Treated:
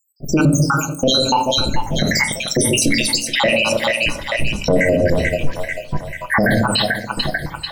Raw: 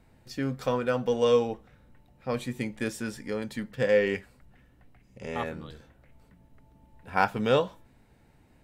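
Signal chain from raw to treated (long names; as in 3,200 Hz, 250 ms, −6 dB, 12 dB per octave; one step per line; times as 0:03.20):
time-frequency cells dropped at random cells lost 84%
automatic gain control gain up to 17 dB
speed change +12%
on a send: echo with a time of its own for lows and highs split 710 Hz, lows 143 ms, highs 440 ms, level −14 dB
on the sum: rectangular room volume 270 cubic metres, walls furnished, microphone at 0.71 metres
boost into a limiter +27.5 dB
level −6 dB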